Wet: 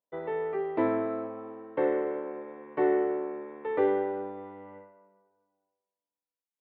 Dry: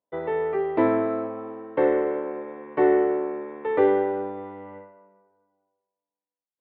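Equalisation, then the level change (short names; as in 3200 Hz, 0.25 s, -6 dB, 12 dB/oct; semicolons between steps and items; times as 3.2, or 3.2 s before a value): bell 80 Hz -8 dB 0.26 oct; -6.0 dB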